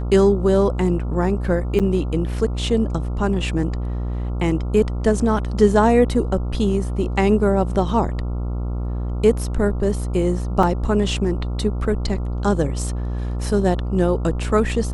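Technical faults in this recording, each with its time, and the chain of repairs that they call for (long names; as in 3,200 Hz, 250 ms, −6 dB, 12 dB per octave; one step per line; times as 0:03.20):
mains buzz 60 Hz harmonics 23 −24 dBFS
0:01.79–0:01.80: drop-out 7.6 ms
0:10.63: drop-out 3 ms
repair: hum removal 60 Hz, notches 23
repair the gap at 0:01.79, 7.6 ms
repair the gap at 0:10.63, 3 ms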